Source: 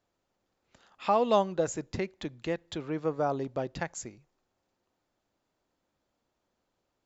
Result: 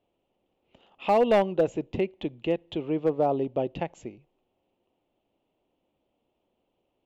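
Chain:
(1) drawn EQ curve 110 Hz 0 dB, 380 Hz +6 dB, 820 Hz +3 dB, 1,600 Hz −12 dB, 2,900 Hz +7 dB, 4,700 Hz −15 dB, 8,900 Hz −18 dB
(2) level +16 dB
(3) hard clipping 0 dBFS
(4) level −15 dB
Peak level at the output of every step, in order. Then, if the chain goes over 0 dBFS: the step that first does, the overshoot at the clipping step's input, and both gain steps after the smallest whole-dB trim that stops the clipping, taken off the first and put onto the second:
−8.5, +7.5, 0.0, −15.0 dBFS
step 2, 7.5 dB
step 2 +8 dB, step 4 −7 dB

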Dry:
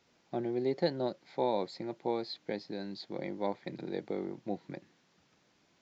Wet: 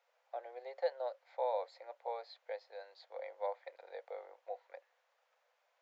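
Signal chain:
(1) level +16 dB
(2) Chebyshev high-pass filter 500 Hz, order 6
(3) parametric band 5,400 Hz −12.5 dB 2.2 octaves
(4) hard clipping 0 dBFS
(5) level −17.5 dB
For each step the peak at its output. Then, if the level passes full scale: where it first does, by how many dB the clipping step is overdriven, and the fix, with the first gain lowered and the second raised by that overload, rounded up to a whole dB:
−1.5, −4.0, −5.5, −5.5, −23.0 dBFS
no step passes full scale

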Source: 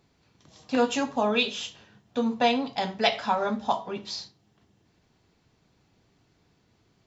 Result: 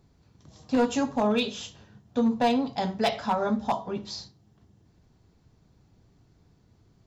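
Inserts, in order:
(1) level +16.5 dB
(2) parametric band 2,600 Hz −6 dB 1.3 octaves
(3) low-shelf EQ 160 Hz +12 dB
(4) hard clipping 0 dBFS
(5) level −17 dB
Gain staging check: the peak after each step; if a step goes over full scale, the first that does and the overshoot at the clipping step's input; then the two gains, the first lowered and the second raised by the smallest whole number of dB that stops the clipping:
+8.0, +5.5, +6.0, 0.0, −17.0 dBFS
step 1, 6.0 dB
step 1 +10.5 dB, step 5 −11 dB

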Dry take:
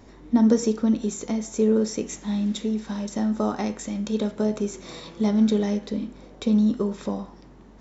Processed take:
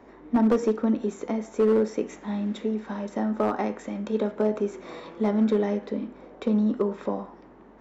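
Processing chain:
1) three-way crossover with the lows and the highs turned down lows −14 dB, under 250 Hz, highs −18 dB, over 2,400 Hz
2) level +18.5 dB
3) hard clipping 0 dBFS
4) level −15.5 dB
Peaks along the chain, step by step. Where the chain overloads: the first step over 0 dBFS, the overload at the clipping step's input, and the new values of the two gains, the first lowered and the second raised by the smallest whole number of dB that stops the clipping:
−10.0, +8.5, 0.0, −15.5 dBFS
step 2, 8.5 dB
step 2 +9.5 dB, step 4 −6.5 dB

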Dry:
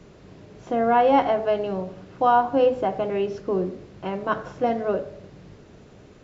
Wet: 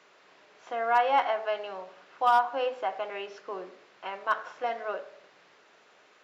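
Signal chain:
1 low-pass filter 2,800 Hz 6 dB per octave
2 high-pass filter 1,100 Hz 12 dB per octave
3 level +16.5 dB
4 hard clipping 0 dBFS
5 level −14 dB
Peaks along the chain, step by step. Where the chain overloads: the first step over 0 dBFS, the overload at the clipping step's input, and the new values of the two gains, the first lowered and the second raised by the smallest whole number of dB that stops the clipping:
−6.5, −13.5, +3.0, 0.0, −14.0 dBFS
step 3, 3.0 dB
step 3 +13.5 dB, step 5 −11 dB

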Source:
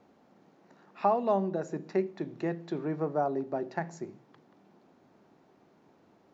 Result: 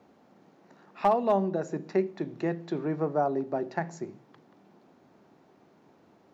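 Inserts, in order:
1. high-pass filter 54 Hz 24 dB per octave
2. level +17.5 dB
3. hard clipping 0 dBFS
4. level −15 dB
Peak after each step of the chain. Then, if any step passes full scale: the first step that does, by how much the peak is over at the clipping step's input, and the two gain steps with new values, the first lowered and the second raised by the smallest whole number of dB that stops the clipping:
−13.0, +4.5, 0.0, −15.0 dBFS
step 2, 4.5 dB
step 2 +12.5 dB, step 4 −10 dB

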